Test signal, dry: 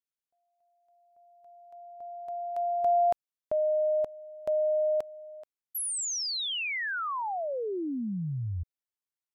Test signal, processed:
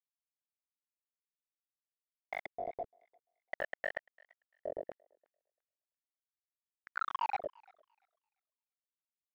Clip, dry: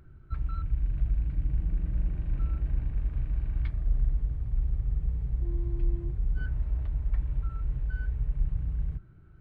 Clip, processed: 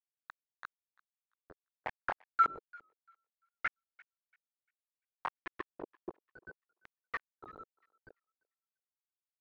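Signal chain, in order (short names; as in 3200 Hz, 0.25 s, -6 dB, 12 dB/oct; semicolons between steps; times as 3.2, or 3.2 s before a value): sine-wave speech; negative-ratio compressor -28 dBFS, ratio -0.5; LFO band-pass saw up 8.6 Hz 890–1800 Hz; chorus 0.3 Hz, delay 15 ms, depth 7.4 ms; requantised 6-bit, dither none; LFO low-pass square 0.61 Hz 440–1800 Hz; thinning echo 0.343 s, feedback 27%, high-pass 1100 Hz, level -23.5 dB; record warp 78 rpm, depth 100 cents; gain +1 dB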